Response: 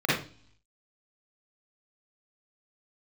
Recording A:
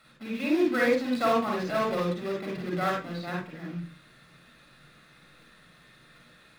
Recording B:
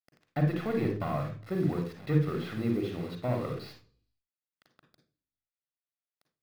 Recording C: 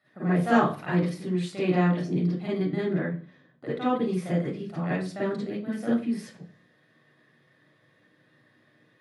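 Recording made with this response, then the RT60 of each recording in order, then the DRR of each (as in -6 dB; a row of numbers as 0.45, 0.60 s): C; 0.40 s, not exponential, 0.40 s; -2.5, 4.0, -9.5 dB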